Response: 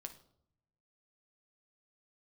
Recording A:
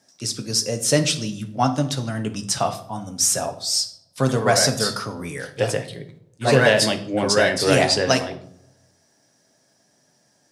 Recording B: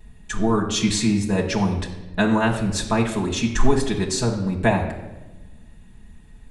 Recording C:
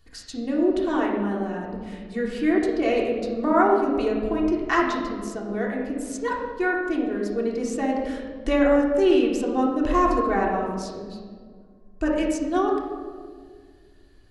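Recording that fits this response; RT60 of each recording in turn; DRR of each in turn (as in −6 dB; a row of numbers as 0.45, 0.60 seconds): A; 0.70, 1.1, 1.9 seconds; 5.5, −5.0, −3.5 decibels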